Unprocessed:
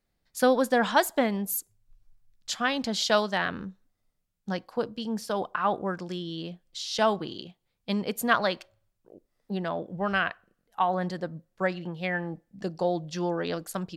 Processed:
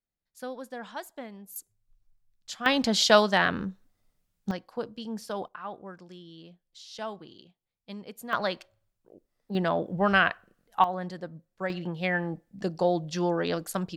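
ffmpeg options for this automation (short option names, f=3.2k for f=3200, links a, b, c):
-af "asetnsamples=n=441:p=0,asendcmd='1.56 volume volume -7dB;2.66 volume volume 4.5dB;4.51 volume volume -4.5dB;5.48 volume volume -12.5dB;8.33 volume volume -2.5dB;9.55 volume volume 4.5dB;10.84 volume volume -5dB;11.7 volume volume 2dB',volume=-16dB"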